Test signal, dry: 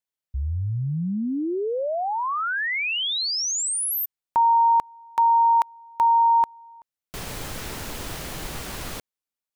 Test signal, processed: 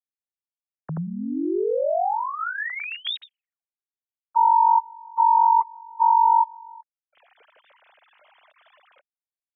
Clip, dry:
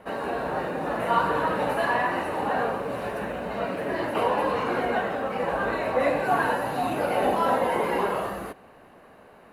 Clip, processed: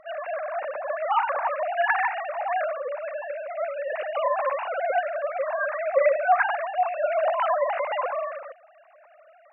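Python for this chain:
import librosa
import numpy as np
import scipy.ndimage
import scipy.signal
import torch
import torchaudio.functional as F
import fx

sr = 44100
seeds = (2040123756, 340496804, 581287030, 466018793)

y = fx.sine_speech(x, sr)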